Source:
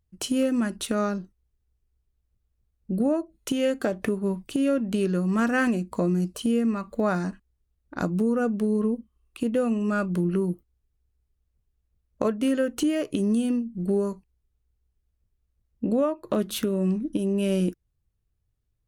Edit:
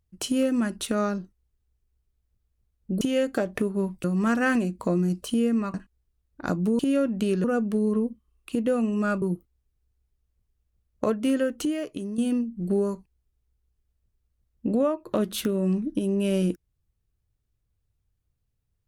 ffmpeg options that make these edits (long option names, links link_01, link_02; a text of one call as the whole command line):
ffmpeg -i in.wav -filter_complex "[0:a]asplit=8[link_01][link_02][link_03][link_04][link_05][link_06][link_07][link_08];[link_01]atrim=end=3.012[link_09];[link_02]atrim=start=3.478:end=4.512[link_10];[link_03]atrim=start=5.158:end=6.862[link_11];[link_04]atrim=start=7.268:end=8.322[link_12];[link_05]atrim=start=4.508:end=5.162[link_13];[link_06]atrim=start=8.318:end=10.102[link_14];[link_07]atrim=start=10.398:end=13.36,asetpts=PTS-STARTPTS,afade=type=out:start_time=2.152:duration=0.81:silence=0.266073[link_15];[link_08]atrim=start=13.36,asetpts=PTS-STARTPTS,afade=type=in:duration=0.004:curve=hsin:silence=0.266073[link_16];[link_09][link_10]acrossfade=duration=0.004:curve1=hsin:curve2=hsin[link_17];[link_17][link_11]acrossfade=duration=0.004:curve1=hsin:curve2=hsin[link_18];[link_18][link_12]acrossfade=duration=0.004:curve1=hsin:curve2=hsin[link_19];[link_19][link_13]acrossfade=duration=0.004:curve1=hsin:curve2=hsin[link_20];[link_20][link_14]acrossfade=duration=0.004:curve1=hsin:curve2=hsin[link_21];[link_15][link_16]concat=n=2:v=0:a=1[link_22];[link_21][link_22]acrossfade=duration=0.004:curve1=hsin:curve2=hsin" out.wav